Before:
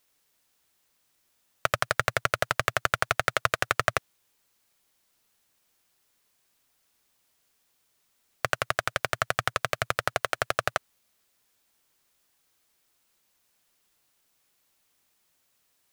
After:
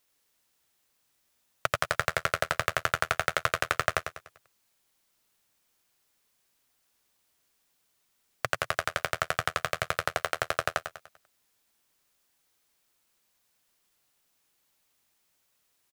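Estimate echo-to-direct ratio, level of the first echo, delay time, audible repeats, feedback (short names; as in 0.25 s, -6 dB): -7.5 dB, -8.5 dB, 98 ms, 4, 41%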